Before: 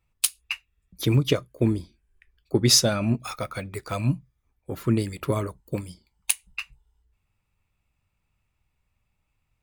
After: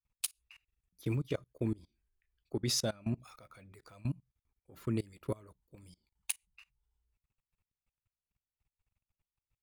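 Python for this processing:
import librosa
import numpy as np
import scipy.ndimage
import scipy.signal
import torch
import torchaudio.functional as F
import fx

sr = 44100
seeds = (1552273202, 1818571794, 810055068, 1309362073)

y = fx.level_steps(x, sr, step_db=24)
y = F.gain(torch.from_numpy(y), -7.5).numpy()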